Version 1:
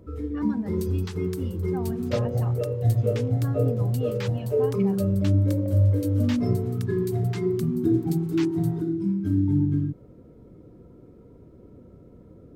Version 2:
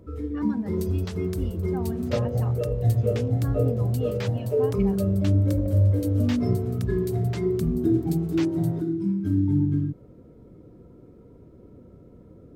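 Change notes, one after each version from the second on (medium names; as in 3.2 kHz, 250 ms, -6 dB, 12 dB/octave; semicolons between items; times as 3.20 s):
second sound: remove steep high-pass 790 Hz 72 dB/octave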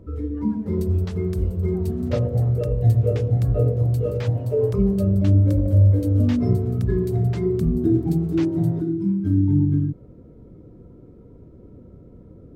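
speech -12.0 dB; master: add tilt EQ -1.5 dB/octave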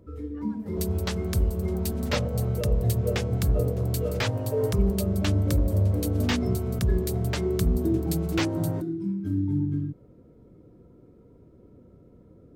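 first sound -4.0 dB; second sound +8.5 dB; master: add tilt EQ +1.5 dB/octave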